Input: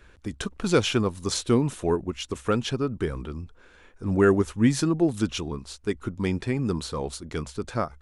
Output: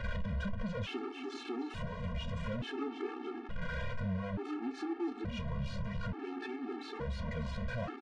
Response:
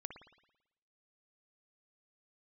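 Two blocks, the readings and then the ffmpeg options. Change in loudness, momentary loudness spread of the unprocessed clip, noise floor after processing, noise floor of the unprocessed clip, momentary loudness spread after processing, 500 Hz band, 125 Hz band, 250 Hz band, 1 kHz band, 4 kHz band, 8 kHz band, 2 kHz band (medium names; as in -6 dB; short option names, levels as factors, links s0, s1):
-13.0 dB, 12 LU, -46 dBFS, -55 dBFS, 4 LU, -15.5 dB, -10.0 dB, -13.5 dB, -10.5 dB, -14.5 dB, under -25 dB, -8.5 dB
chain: -filter_complex "[0:a]aeval=exprs='val(0)+0.5*0.0708*sgn(val(0))':c=same,asplit=2[s0][s1];[s1]adelay=30,volume=0.282[s2];[s0][s2]amix=inputs=2:normalize=0,asplit=8[s3][s4][s5][s6][s7][s8][s9][s10];[s4]adelay=291,afreqshift=-100,volume=0.376[s11];[s5]adelay=582,afreqshift=-200,volume=0.219[s12];[s6]adelay=873,afreqshift=-300,volume=0.126[s13];[s7]adelay=1164,afreqshift=-400,volume=0.0733[s14];[s8]adelay=1455,afreqshift=-500,volume=0.0427[s15];[s9]adelay=1746,afreqshift=-600,volume=0.0245[s16];[s10]adelay=2037,afreqshift=-700,volume=0.0143[s17];[s3][s11][s12][s13][s14][s15][s16][s17]amix=inputs=8:normalize=0,agate=range=0.0794:threshold=0.0447:ratio=16:detection=peak,acontrast=70,asoftclip=type=tanh:threshold=0.178,alimiter=level_in=3.55:limit=0.0631:level=0:latency=1,volume=0.282,lowpass=2400,anlmdn=0.00251,acompressor=threshold=0.0112:ratio=16,flanger=delay=8.2:depth=4:regen=-65:speed=1.5:shape=sinusoidal,afftfilt=real='re*gt(sin(2*PI*0.57*pts/sr)*(1-2*mod(floor(b*sr/1024/230),2)),0)':imag='im*gt(sin(2*PI*0.57*pts/sr)*(1-2*mod(floor(b*sr/1024/230),2)),0)':win_size=1024:overlap=0.75,volume=3.55"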